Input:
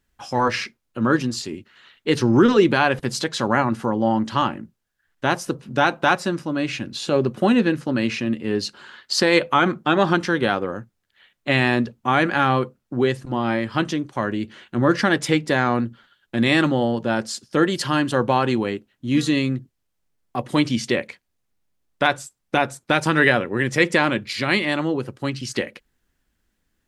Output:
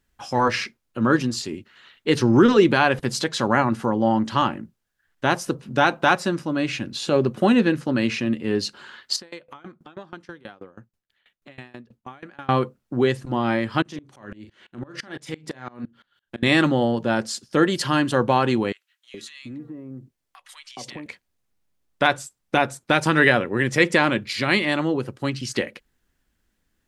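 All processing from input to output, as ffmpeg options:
-filter_complex "[0:a]asettb=1/sr,asplit=3[s0][s1][s2];[s0]atrim=end=9.164[s3];[s1]atrim=start=9.16:end=12.49,asetpts=PTS-STARTPTS,afade=t=in:d=0.004:c=qsin,afade=t=out:st=3.326:d=0.004:c=qsin,acompressor=threshold=0.0141:ratio=2.5:attack=3.2:release=140:knee=1:detection=peak,aeval=exprs='val(0)*pow(10,-23*if(lt(mod(6.2*n/s,1),2*abs(6.2)/1000),1-mod(6.2*n/s,1)/(2*abs(6.2)/1000),(mod(6.2*n/s,1)-2*abs(6.2)/1000)/(1-2*abs(6.2)/1000))/20)':c=same[s4];[s2]atrim=start=12.486[s5];[s3][s4]acrossfade=d=0.004:c1=hsin:c2=qsin[s6];[s6][s5]acrossfade=d=0.004:c1=qsin:c2=hsin,asettb=1/sr,asplit=3[s7][s8][s9];[s7]atrim=end=13.824[s10];[s8]atrim=start=13.82:end=16.43,asetpts=PTS-STARTPTS,afade=t=in:d=0.004:c=qsin,afade=t=out:st=2.606:d=0.004:c=qsin,acompressor=threshold=0.0562:ratio=4:attack=3.2:release=140:knee=1:detection=peak,asplit=2[s11][s12];[s12]adelay=38,volume=0.316[s13];[s11][s13]amix=inputs=2:normalize=0,atrim=end_sample=115101,aeval=exprs='val(0)*pow(10,-25*if(lt(mod(-5.9*n/s,1),2*abs(-5.9)/1000),1-mod(-5.9*n/s,1)/(2*abs(-5.9)/1000),(mod(-5.9*n/s,1)-2*abs(-5.9)/1000)/(1-2*abs(-5.9)/1000))/20)':c=same[s14];[s9]atrim=start=16.426[s15];[s10][s14]acrossfade=d=0.004:c1=hsin:c2=qsin[s16];[s16][s15]acrossfade=d=0.004:c1=qsin:c2=hsin,asettb=1/sr,asplit=3[s17][s18][s19];[s17]atrim=end=18.724[s20];[s18]atrim=start=18.72:end=21.06,asetpts=PTS-STARTPTS,afade=t=in:d=0.004:c=qsin,afade=t=out:st=2.336:d=0.004:c=qsin,lowshelf=f=210:g=-6.5,acompressor=threshold=0.0224:ratio=6:attack=3.2:release=140:knee=1:detection=peak,acrossover=split=1200[s21][s22];[s21]adelay=420[s23];[s23][s22]amix=inputs=2:normalize=0,atrim=end_sample=103194[s24];[s19]atrim=start=21.056[s25];[s20][s24]acrossfade=d=0.004:c1=hsin:c2=qsin[s26];[s26][s25]acrossfade=d=0.004:c1=qsin:c2=hsin"

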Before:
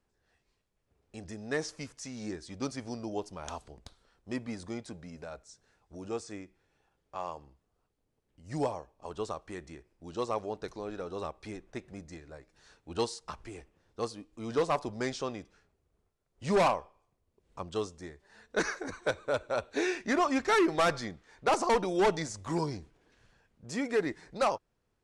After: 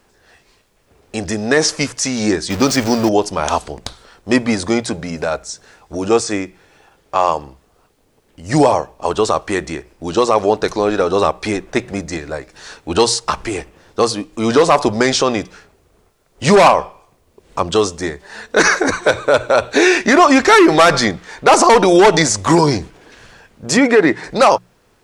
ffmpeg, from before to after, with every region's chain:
-filter_complex "[0:a]asettb=1/sr,asplit=3[s0][s1][s2];[s0]atrim=end=2.504[s3];[s1]atrim=start=2.5:end=3.09,asetpts=PTS-STARTPTS,afade=t=in:d=0.004:c=qsin,afade=t=out:st=0.586:d=0.004:c=qsin,aeval=exprs='val(0)+0.5*0.00668*sgn(val(0))':c=same,equalizer=f=9800:t=o:w=0.34:g=-8[s4];[s2]atrim=start=3.086[s5];[s3][s4]acrossfade=d=0.004:c1=hsin:c2=qsin[s6];[s6][s5]acrossfade=d=0.004:c1=qsin:c2=hsin,asettb=1/sr,asplit=3[s7][s8][s9];[s7]atrim=end=23.774[s10];[s8]atrim=start=23.77:end=24.24,asetpts=PTS-STARTPTS,afade=t=in:d=0.004:c=qsin,afade=t=out:st=0.466:d=0.004:c=qsin,highpass=86,bass=f=250:g=0,treble=f=4000:g=-10[s11];[s9]atrim=start=24.236[s12];[s10][s11]acrossfade=d=0.004:c1=hsin:c2=qsin[s13];[s13][s12]acrossfade=d=0.004:c1=qsin:c2=hsin,lowshelf=f=230:g=-7,bandreject=f=60:t=h:w=6,bandreject=f=120:t=h:w=6,bandreject=f=180:t=h:w=6,alimiter=level_in=20:limit=0.891:release=50:level=0:latency=1,volume=0.891"

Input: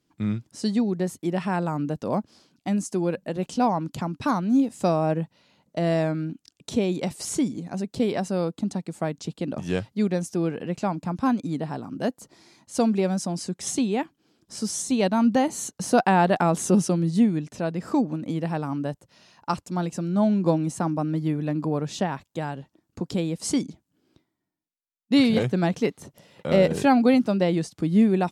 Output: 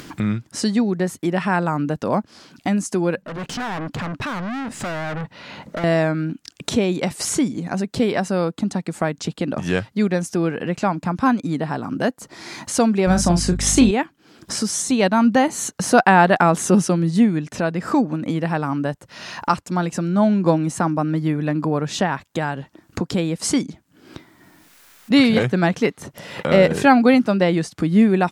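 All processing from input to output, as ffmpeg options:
-filter_complex "[0:a]asettb=1/sr,asplit=3[s0][s1][s2];[s0]atrim=end=3.224[s3];[s1]atrim=start=3.22:end=5.84,asetpts=PTS-STARTPTS,afade=t=in:d=0.004:c=qsin,afade=t=out:st=2.616:d=0.004:c=qsin,aeval=exprs='(tanh(89.1*val(0)+0.15)-tanh(0.15))/89.1':c=same,highshelf=f=6400:g=-11[s4];[s2]atrim=start=5.836[s5];[s3][s4]acrossfade=d=0.004:c1=hsin:c2=qsin[s6];[s6][s5]acrossfade=d=0.004:c1=qsin:c2=hsin,asettb=1/sr,asplit=3[s7][s8][s9];[s7]atrim=end=13.074[s10];[s8]atrim=start=13.07:end=13.91,asetpts=PTS-STARTPTS,afade=t=in:d=0.004:c=qsin,afade=t=out:st=0.836:d=0.004:c=qsin,asplit=2[s11][s12];[s12]adelay=34,volume=0.398[s13];[s11][s13]amix=inputs=2:normalize=0,atrim=end_sample=37044,acontrast=52,aeval=exprs='val(0)+0.0355*(sin(2*PI*50*n/s)+sin(2*PI*2*50*n/s)/2+sin(2*PI*3*50*n/s)/3+sin(2*PI*4*50*n/s)/4+sin(2*PI*5*50*n/s)/5)':c=same[s14];[s9]atrim=start=13.906[s15];[s10][s14]acrossfade=d=0.004:c1=hsin:c2=qsin[s16];[s16][s15]acrossfade=d=0.004:c1=qsin:c2=hsin,equalizer=f=1600:w=1:g=7,acompressor=mode=upward:threshold=0.0794:ratio=2.5,volume=1.58"

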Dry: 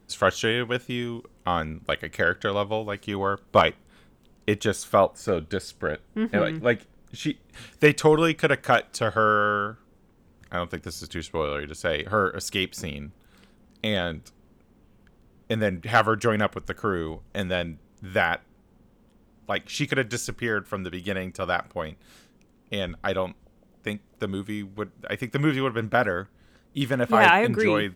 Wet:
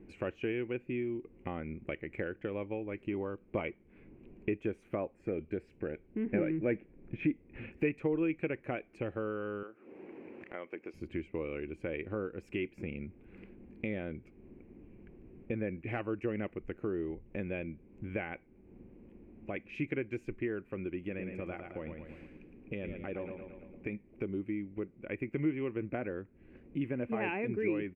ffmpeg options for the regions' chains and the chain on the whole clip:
-filter_complex "[0:a]asettb=1/sr,asplit=3[s0][s1][s2];[s0]atrim=end=6.264[s3];[s1]atrim=start=6.26:end=7.72,asetpts=PTS-STARTPTS,afade=t=in:d=0.004:c=qsin,afade=t=out:st=1.456:d=0.004:c=qsin,lowpass=2800,acontrast=88[s4];[s2]atrim=start=7.716[s5];[s3][s4]acrossfade=d=0.004:c1=hsin:c2=qsin[s6];[s6][s5]acrossfade=d=0.004:c1=qsin:c2=hsin,asettb=1/sr,asplit=3[s7][s8][s9];[s7]atrim=end=9.634[s10];[s8]atrim=start=9.63:end=10.94,asetpts=PTS-STARTPTS,afade=t=in:d=0.004:c=qsin,afade=t=out:st=1.306:d=0.004:c=qsin,highpass=460,lowpass=6200,acompressor=mode=upward:threshold=0.0141:ratio=2.5:attack=3.2:release=140:knee=2.83:detection=peak[s11];[s9]atrim=start=10.936[s12];[s10][s11]acrossfade=d=0.004:c1=hsin:c2=qsin[s13];[s13][s12]acrossfade=d=0.004:c1=qsin:c2=hsin,asettb=1/sr,asplit=3[s14][s15][s16];[s14]atrim=end=20.994[s17];[s15]atrim=start=20.99:end=23.93,asetpts=PTS-STARTPTS,afade=t=in:d=0.004:c=qsin,afade=t=out:st=2.936:d=0.004:c=qsin,acompressor=threshold=0.0251:ratio=1.5:attack=3.2:release=140:knee=1:detection=peak,aecho=1:1:112|224|336|448|560:0.447|0.197|0.0865|0.0381|0.0167,atrim=end_sample=129654[s18];[s16]atrim=start=23.926[s19];[s17][s18]acrossfade=d=0.004:c1=hsin:c2=qsin[s20];[s20][s19]acrossfade=d=0.004:c1=qsin:c2=hsin,equalizer=f=340:w=2.3:g=11.5,acompressor=threshold=0.00631:ratio=2,firequalizer=gain_entry='entry(230,0);entry(1300,-12);entry(2400,4);entry(3500,-25);entry(6000,-29)':delay=0.05:min_phase=1,volume=1.19"

